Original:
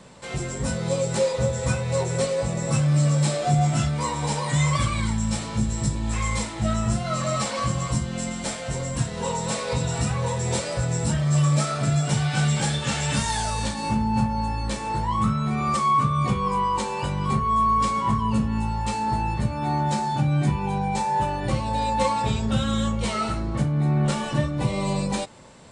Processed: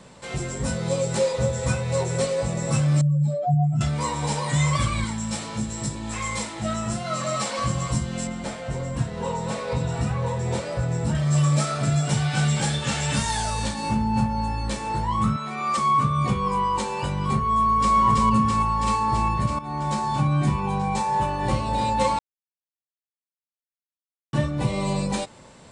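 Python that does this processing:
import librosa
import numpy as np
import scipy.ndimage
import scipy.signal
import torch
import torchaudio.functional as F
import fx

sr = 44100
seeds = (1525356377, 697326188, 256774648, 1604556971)

y = fx.spec_expand(x, sr, power=2.0, at=(3.01, 3.81))
y = fx.highpass(y, sr, hz=200.0, slope=6, at=(5.04, 7.58))
y = fx.high_shelf(y, sr, hz=3400.0, db=-11.5, at=(8.27, 11.15))
y = fx.weighting(y, sr, curve='A', at=(15.36, 15.78))
y = fx.echo_throw(y, sr, start_s=17.51, length_s=0.45, ms=330, feedback_pct=80, wet_db=-1.0)
y = fx.echo_throw(y, sr, start_s=21.09, length_s=0.53, ms=300, feedback_pct=55, wet_db=-8.5)
y = fx.edit(y, sr, fx.fade_in_from(start_s=19.59, length_s=0.65, curve='qsin', floor_db=-14.0),
    fx.silence(start_s=22.19, length_s=2.14), tone=tone)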